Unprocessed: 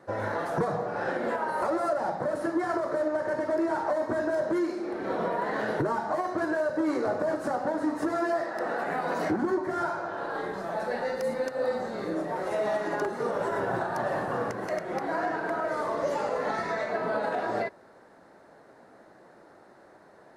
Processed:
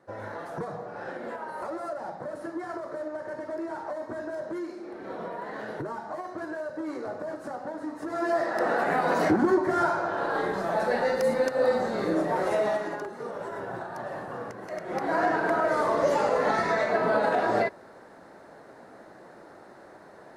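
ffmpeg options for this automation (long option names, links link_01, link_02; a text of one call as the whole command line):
ffmpeg -i in.wav -af "volume=16.5dB,afade=type=in:start_time=8.05:duration=0.47:silence=0.251189,afade=type=out:start_time=12.43:duration=0.59:silence=0.266073,afade=type=in:start_time=14.7:duration=0.55:silence=0.266073" out.wav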